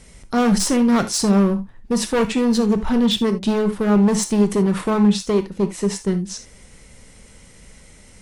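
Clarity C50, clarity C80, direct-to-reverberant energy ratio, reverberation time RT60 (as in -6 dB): 12.5 dB, 21.5 dB, 8.0 dB, not exponential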